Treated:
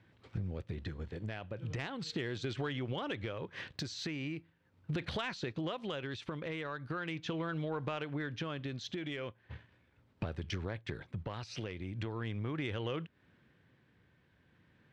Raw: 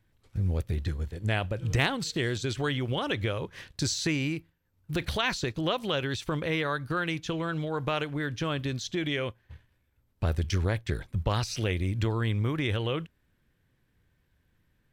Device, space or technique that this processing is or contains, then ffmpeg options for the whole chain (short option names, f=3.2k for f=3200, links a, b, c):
AM radio: -af "highpass=120,lowpass=3.6k,acompressor=threshold=-42dB:ratio=8,asoftclip=type=tanh:threshold=-33dB,tremolo=f=0.39:d=0.33,volume=8.5dB"